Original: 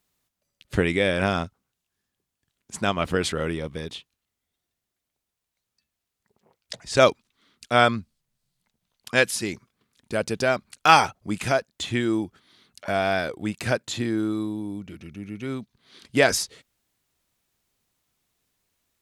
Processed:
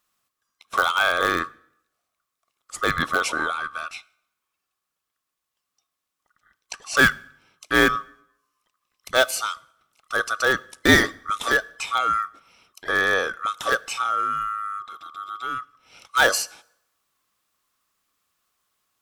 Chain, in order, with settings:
neighbouring bands swapped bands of 1,000 Hz
dynamic equaliser 530 Hz, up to +5 dB, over −39 dBFS, Q 1.5
in parallel at −12 dB: wrap-around overflow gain 12 dB
on the sum: convolution reverb RT60 0.75 s, pre-delay 5 ms, DRR 18.5 dB
level −1 dB

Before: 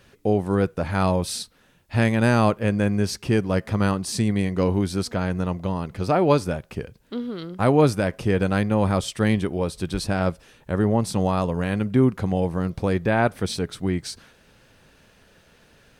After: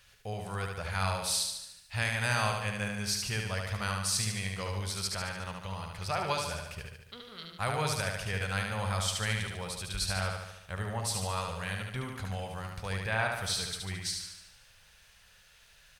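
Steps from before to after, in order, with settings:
guitar amp tone stack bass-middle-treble 10-0-10
repeating echo 73 ms, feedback 57%, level −4 dB

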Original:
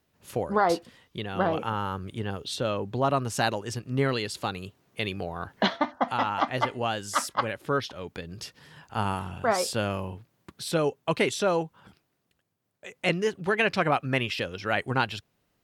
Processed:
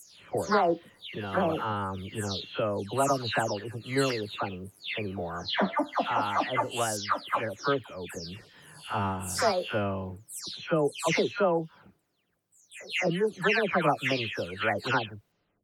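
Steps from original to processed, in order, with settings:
every frequency bin delayed by itself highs early, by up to 322 ms
parametric band 130 Hz −7.5 dB 0.25 octaves

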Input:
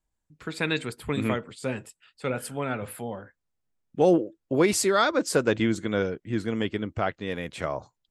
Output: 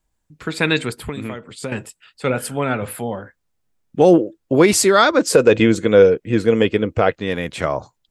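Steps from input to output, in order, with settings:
0:00.95–0:01.72: downward compressor 12 to 1, threshold −33 dBFS, peak gain reduction 13 dB
0:05.29–0:07.15: hollow resonant body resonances 480/2,500 Hz, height 11 dB, ringing for 35 ms
boost into a limiter +10 dB
level −1 dB

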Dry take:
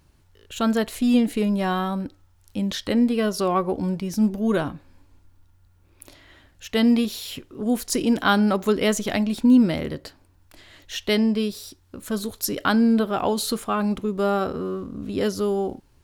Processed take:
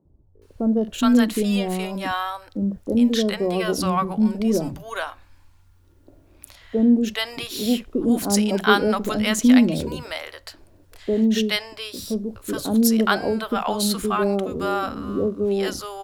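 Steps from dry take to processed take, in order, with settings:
three-band delay without the direct sound mids, lows, highs 50/420 ms, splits 160/650 Hz
level +3 dB

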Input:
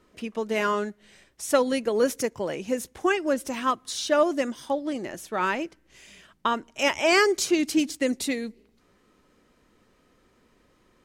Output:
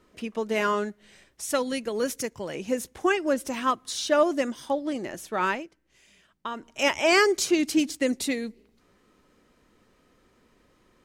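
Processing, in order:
0:01.45–0:02.55: parametric band 560 Hz −5.5 dB 2.9 octaves
0:05.51–0:06.66: duck −9 dB, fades 0.12 s

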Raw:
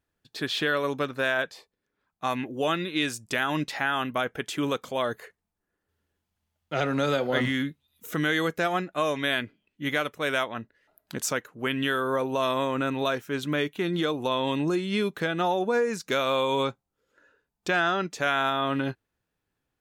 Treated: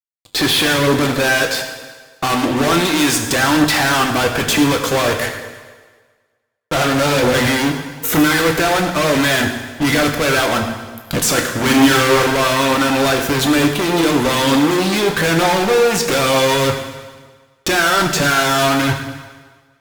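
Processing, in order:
in parallel at +2.5 dB: output level in coarse steps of 18 dB
on the sum: fuzz pedal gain 42 dB, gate −47 dBFS
0:11.34–0:12.31: double-tracking delay 40 ms −7 dB
harmonic generator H 3 −15 dB, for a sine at −8 dBFS
on a send at −3 dB: convolution reverb RT60 1.5 s, pre-delay 5 ms
on the sum: phase shifter 1.1 Hz, delay 3 ms, feedback 21%
level +1 dB

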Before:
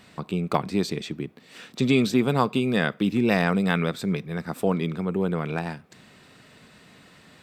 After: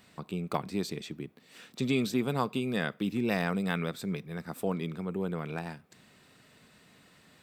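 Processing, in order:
high-shelf EQ 10,000 Hz +9.5 dB
level −8 dB

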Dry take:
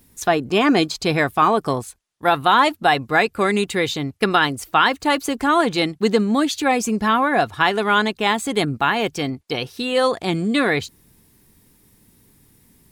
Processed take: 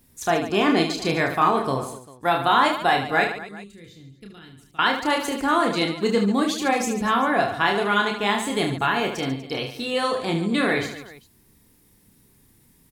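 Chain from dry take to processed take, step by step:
0:03.24–0:04.79: guitar amp tone stack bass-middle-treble 10-0-1
reverse bouncing-ball delay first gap 30 ms, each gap 1.5×, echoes 5
level −5 dB

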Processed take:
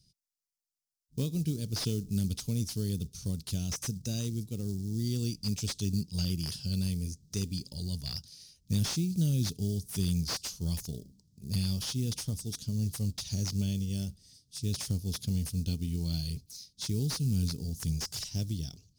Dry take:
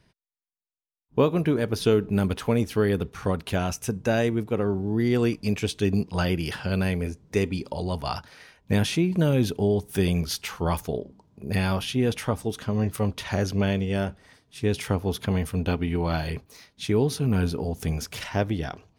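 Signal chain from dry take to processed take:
floating-point word with a short mantissa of 4 bits
drawn EQ curve 160 Hz 0 dB, 920 Hz −28 dB, 1,800 Hz −26 dB, 5,000 Hz +11 dB, 13,000 Hz +6 dB
slew-rate limiting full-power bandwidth 200 Hz
level −4 dB

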